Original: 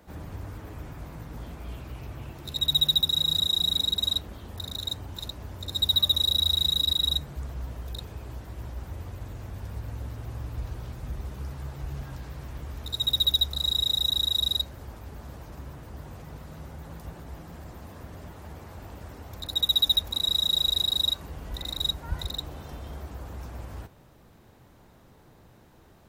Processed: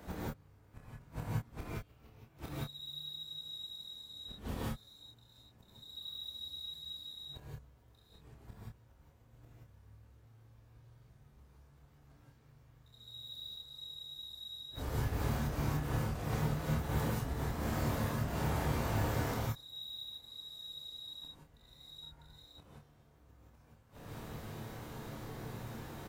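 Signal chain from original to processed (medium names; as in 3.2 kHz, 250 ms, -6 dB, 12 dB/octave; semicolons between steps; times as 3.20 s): inverted gate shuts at -31 dBFS, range -34 dB; doubling 27 ms -4.5 dB; gated-style reverb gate 200 ms rising, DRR -7 dB; trim +1.5 dB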